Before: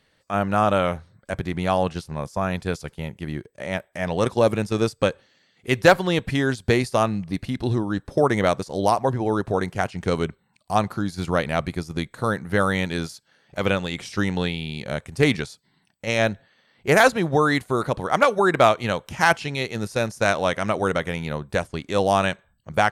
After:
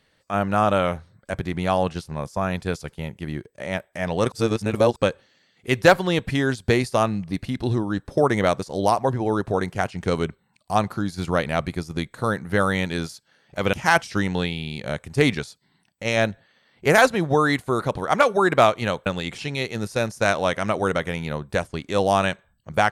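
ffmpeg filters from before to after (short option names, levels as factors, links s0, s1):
-filter_complex "[0:a]asplit=7[s0][s1][s2][s3][s4][s5][s6];[s0]atrim=end=4.322[s7];[s1]atrim=start=4.318:end=4.962,asetpts=PTS-STARTPTS,areverse[s8];[s2]atrim=start=4.958:end=13.732[s9];[s3]atrim=start=19.078:end=19.382[s10];[s4]atrim=start=14.048:end=19.082[s11];[s5]atrim=start=13.728:end=14.052[s12];[s6]atrim=start=19.378[s13];[s7][s8]acrossfade=d=0.004:c1=hsin:c2=hsin[s14];[s14][s9]acrossfade=d=0.004:c1=hsin:c2=hsin[s15];[s15][s10]acrossfade=d=0.004:c1=hsin:c2=hsin[s16];[s16][s11]acrossfade=d=0.004:c1=hsin:c2=hsin[s17];[s17][s12]acrossfade=d=0.004:c1=hsin:c2=hsin[s18];[s18][s13]acrossfade=d=0.004:c1=hsin:c2=hsin"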